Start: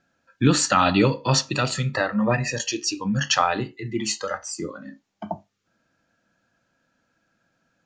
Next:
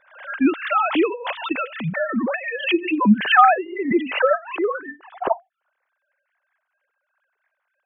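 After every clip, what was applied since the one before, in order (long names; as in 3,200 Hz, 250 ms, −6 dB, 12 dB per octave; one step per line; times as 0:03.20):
three sine waves on the formant tracks
gain on a spectral selection 0:03.25–0:05.70, 370–1,800 Hz +9 dB
background raised ahead of every attack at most 110 dB per second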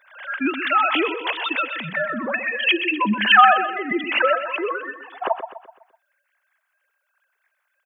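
spectral tilt +3.5 dB per octave
repeating echo 126 ms, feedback 44%, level −10 dB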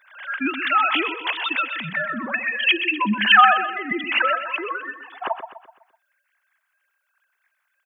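parametric band 490 Hz −10 dB 1.1 octaves
level +1 dB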